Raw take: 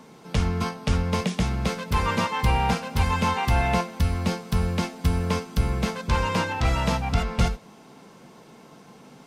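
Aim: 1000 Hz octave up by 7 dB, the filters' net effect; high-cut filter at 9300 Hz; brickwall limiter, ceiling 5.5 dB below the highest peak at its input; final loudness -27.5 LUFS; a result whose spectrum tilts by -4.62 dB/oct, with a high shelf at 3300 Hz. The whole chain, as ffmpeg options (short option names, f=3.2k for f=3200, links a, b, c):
-af "lowpass=9.3k,equalizer=f=1k:t=o:g=7.5,highshelf=f=3.3k:g=8.5,volume=-3.5dB,alimiter=limit=-16dB:level=0:latency=1"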